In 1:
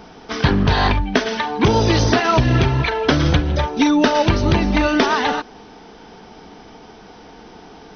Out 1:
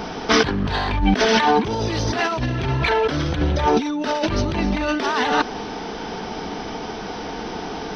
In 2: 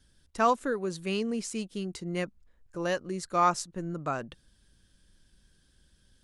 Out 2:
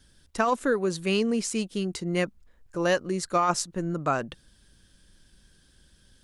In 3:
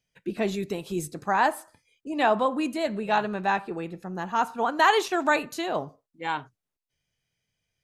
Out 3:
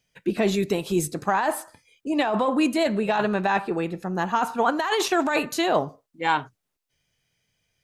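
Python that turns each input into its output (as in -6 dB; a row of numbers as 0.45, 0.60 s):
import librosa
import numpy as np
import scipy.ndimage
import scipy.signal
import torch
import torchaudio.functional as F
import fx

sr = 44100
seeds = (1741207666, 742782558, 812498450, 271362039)

p1 = 10.0 ** (-17.5 / 20.0) * np.tanh(x / 10.0 ** (-17.5 / 20.0))
p2 = x + F.gain(torch.from_numpy(p1), -8.0).numpy()
p3 = fx.low_shelf(p2, sr, hz=170.0, db=-2.5)
p4 = fx.over_compress(p3, sr, threshold_db=-23.0, ratio=-1.0)
y = F.gain(torch.from_numpy(p4), 2.5).numpy()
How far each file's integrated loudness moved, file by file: -4.5, +3.5, +2.5 LU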